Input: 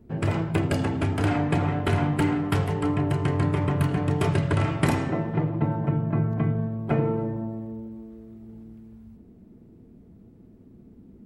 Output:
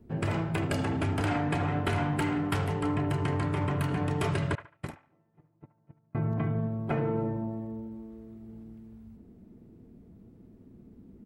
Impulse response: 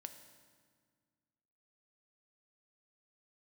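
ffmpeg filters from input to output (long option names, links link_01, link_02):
-filter_complex "[0:a]asettb=1/sr,asplit=3[link_01][link_02][link_03];[link_01]atrim=end=4.554[link_04];[link_02]atrim=start=4.55:end=6.15,asetpts=PTS-STARTPTS,afade=type=in:duration=0.004:curve=qsin,afade=type=out:start_time=1.596:duration=0.004:curve=qsin,agate=range=-40dB:threshold=-17dB:ratio=16:detection=peak[link_05];[link_03]atrim=start=6.146[link_06];[link_04][link_05]acrossfade=duration=0.004:curve1=hsin:curve2=qsin[link_07];[link_07][link_06]acrossfade=duration=0.004:curve1=qsin:curve2=hsin,acrossover=split=680|2700[link_08][link_09][link_10];[link_08]alimiter=limit=-20dB:level=0:latency=1[link_11];[link_09]aecho=1:1:72|144|216:0.398|0.115|0.0335[link_12];[link_11][link_12][link_10]amix=inputs=3:normalize=0,volume=-2.5dB"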